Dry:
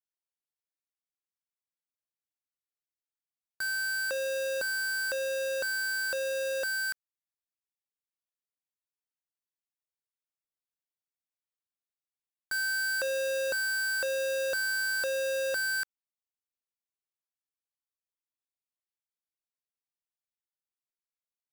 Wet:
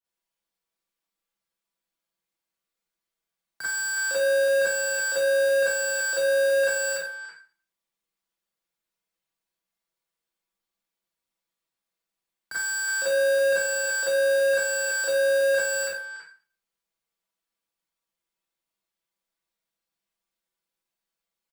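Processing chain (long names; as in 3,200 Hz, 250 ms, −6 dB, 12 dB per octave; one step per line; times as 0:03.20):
high-shelf EQ 4,900 Hz −5 dB
comb filter 6.2 ms, depth 61%
brickwall limiter −31 dBFS, peak gain reduction 5 dB
four-comb reverb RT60 0.41 s, combs from 33 ms, DRR −9 dB
frequency shifter +13 Hz
far-end echo of a speakerphone 330 ms, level −7 dB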